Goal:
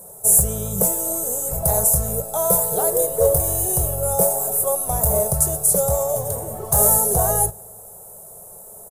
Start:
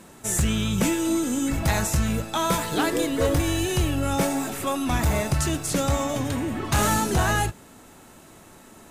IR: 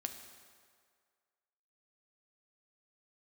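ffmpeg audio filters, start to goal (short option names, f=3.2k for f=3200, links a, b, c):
-filter_complex "[0:a]asplit=2[a][b];[1:a]atrim=start_sample=2205[c];[b][c]afir=irnorm=-1:irlink=0,volume=-16dB[d];[a][d]amix=inputs=2:normalize=0,aexciter=amount=4.4:drive=2.8:freq=2.5k,firequalizer=gain_entry='entry(190,0);entry(270,-25);entry(420,7);entry(640,9);entry(1000,-3);entry(2600,-29);entry(10000,4)':delay=0.05:min_phase=1,volume=-1.5dB"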